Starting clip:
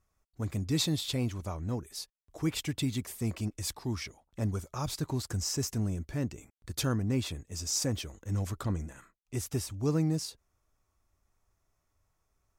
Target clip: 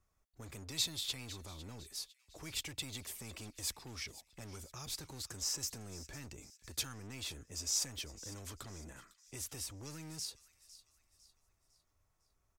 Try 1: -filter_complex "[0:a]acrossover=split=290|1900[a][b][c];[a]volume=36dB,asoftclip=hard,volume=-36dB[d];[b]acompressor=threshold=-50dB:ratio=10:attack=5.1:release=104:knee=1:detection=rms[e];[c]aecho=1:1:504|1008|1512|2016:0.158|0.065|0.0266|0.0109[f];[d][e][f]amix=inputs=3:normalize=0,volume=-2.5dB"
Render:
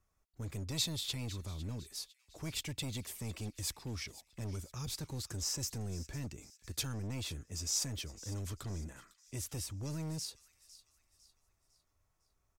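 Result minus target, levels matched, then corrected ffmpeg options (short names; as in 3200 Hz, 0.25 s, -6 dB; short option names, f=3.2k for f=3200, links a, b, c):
overloaded stage: distortion -4 dB
-filter_complex "[0:a]acrossover=split=290|1900[a][b][c];[a]volume=47.5dB,asoftclip=hard,volume=-47.5dB[d];[b]acompressor=threshold=-50dB:ratio=10:attack=5.1:release=104:knee=1:detection=rms[e];[c]aecho=1:1:504|1008|1512|2016:0.158|0.065|0.0266|0.0109[f];[d][e][f]amix=inputs=3:normalize=0,volume=-2.5dB"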